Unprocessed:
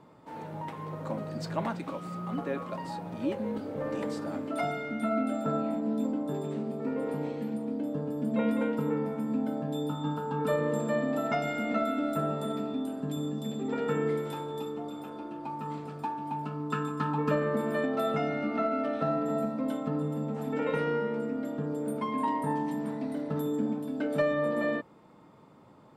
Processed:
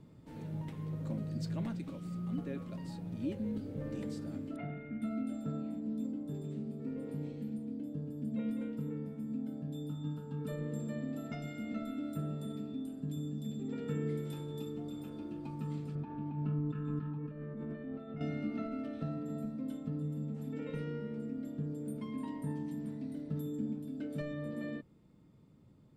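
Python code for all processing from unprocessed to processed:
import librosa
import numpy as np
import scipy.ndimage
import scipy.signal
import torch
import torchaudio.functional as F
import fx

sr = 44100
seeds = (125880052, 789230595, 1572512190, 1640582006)

y = fx.chain(x, sr, fx.self_delay(depth_ms=0.087),
    fx.lowpass(hz=2200.0, slope=24),
    fx.room_flutter(wall_m=11.4, rt60_s=0.25), at=(4.56, 5.02))
y = fx.chain(y, sr, fx.over_compress(threshold_db=-35.0, ratio=-1.0),
    fx.lowpass(hz=2100.0, slope=12), at=(15.95, 18.21))
y = fx.tone_stack(y, sr, knobs='10-0-1')
y = fx.rider(y, sr, range_db=10, speed_s=2.0)
y = y * librosa.db_to_amplitude(12.0)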